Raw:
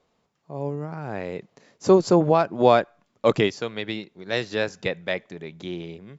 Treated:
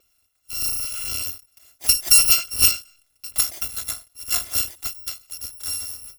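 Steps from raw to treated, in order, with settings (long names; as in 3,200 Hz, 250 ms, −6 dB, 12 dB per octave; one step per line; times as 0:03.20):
samples in bit-reversed order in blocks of 256 samples
every ending faded ahead of time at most 190 dB per second
level +4 dB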